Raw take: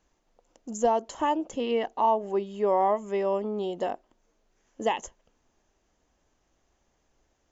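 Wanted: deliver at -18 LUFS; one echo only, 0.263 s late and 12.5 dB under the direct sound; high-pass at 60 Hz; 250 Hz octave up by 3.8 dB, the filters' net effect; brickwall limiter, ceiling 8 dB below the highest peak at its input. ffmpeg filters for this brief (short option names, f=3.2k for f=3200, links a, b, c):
-af "highpass=60,equalizer=f=250:t=o:g=5,alimiter=limit=-19dB:level=0:latency=1,aecho=1:1:263:0.237,volume=11.5dB"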